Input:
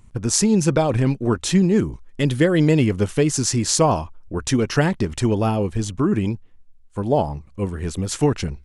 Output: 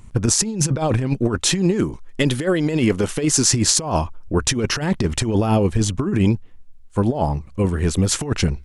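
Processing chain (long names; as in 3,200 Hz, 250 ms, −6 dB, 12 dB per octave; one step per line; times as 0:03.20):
0:01.39–0:03.49: parametric band 71 Hz −9.5 dB 2.6 octaves
compressor whose output falls as the input rises −21 dBFS, ratio −0.5
level +4 dB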